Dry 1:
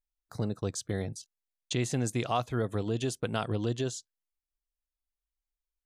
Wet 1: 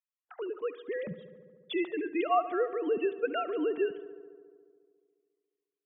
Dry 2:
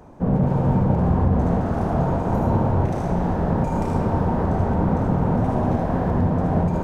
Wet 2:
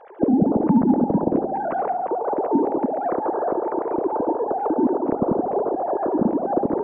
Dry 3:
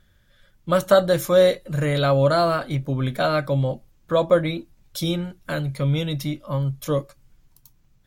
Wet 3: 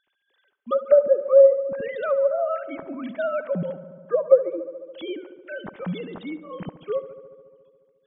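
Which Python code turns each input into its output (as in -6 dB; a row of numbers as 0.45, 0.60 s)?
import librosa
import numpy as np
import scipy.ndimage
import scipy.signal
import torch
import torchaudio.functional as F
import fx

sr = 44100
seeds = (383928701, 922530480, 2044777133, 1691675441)

y = fx.sine_speech(x, sr)
y = fx.env_lowpass_down(y, sr, base_hz=630.0, full_db=-17.5)
y = fx.echo_filtered(y, sr, ms=71, feedback_pct=80, hz=2800.0, wet_db=-15.0)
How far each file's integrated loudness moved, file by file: +0.5, -0.5, 0.0 LU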